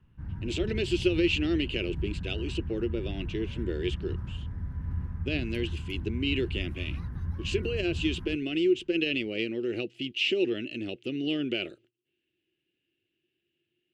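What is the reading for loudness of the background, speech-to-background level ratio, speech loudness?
−37.0 LKFS, 6.0 dB, −31.0 LKFS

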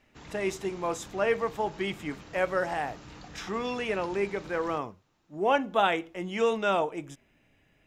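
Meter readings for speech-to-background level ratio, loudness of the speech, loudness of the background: 18.0 dB, −30.0 LKFS, −48.0 LKFS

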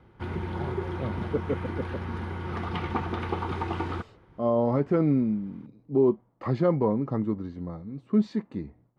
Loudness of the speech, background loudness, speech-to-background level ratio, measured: −27.5 LKFS, −33.0 LKFS, 5.5 dB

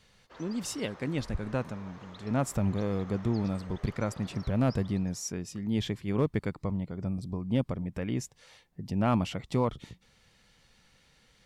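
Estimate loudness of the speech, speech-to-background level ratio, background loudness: −32.0 LKFS, 19.0 dB, −51.0 LKFS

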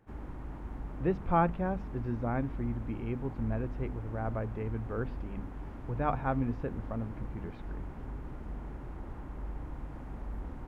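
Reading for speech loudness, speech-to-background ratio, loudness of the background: −35.0 LKFS, 8.5 dB, −43.5 LKFS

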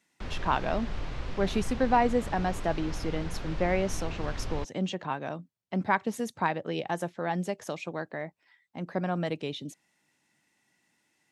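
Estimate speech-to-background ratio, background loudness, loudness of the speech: 8.0 dB, −39.5 LKFS, −31.5 LKFS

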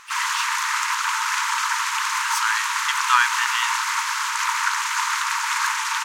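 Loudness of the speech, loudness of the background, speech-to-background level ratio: −26.0 LKFS, −22.0 LKFS, −4.0 dB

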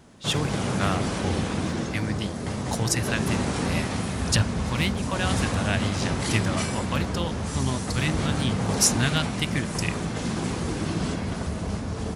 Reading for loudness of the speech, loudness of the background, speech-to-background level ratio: −29.0 LKFS, −28.0 LKFS, −1.0 dB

